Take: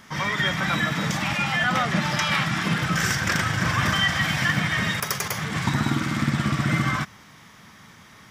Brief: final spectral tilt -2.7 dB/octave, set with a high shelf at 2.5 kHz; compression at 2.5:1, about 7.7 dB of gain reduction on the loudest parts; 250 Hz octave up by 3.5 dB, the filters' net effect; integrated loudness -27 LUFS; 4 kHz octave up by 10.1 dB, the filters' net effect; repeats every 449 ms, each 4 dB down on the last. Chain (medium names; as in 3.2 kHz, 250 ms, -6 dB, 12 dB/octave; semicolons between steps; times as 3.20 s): peaking EQ 250 Hz +5 dB; treble shelf 2.5 kHz +8.5 dB; peaking EQ 4 kHz +6 dB; compression 2.5:1, threshold -25 dBFS; feedback delay 449 ms, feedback 63%, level -4 dB; trim -4.5 dB